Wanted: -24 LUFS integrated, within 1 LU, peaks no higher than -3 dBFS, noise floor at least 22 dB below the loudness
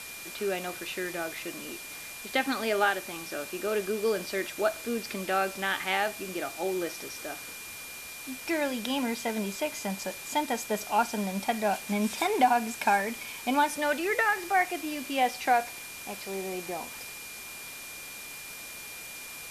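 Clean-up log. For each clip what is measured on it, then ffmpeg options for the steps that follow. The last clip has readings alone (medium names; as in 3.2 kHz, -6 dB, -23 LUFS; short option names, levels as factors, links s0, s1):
steady tone 2.4 kHz; tone level -44 dBFS; noise floor -42 dBFS; noise floor target -53 dBFS; loudness -30.5 LUFS; peak level -10.0 dBFS; loudness target -24.0 LUFS
-> -af "bandreject=f=2400:w=30"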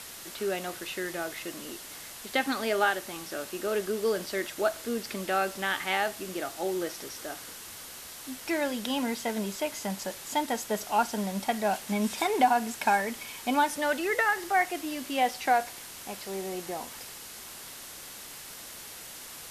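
steady tone not found; noise floor -44 dBFS; noise floor target -52 dBFS
-> -af "afftdn=nr=8:nf=-44"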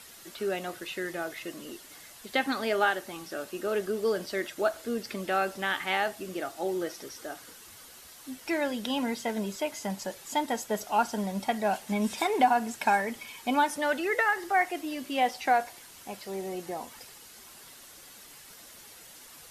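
noise floor -50 dBFS; noise floor target -52 dBFS
-> -af "afftdn=nr=6:nf=-50"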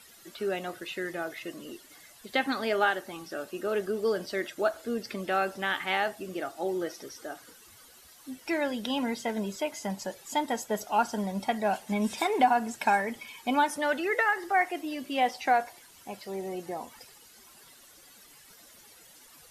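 noise floor -55 dBFS; loudness -30.0 LUFS; peak level -10.5 dBFS; loudness target -24.0 LUFS
-> -af "volume=2"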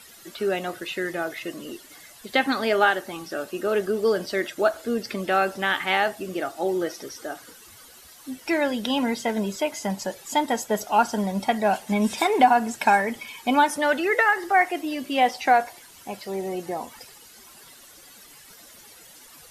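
loudness -24.0 LUFS; peak level -4.5 dBFS; noise floor -49 dBFS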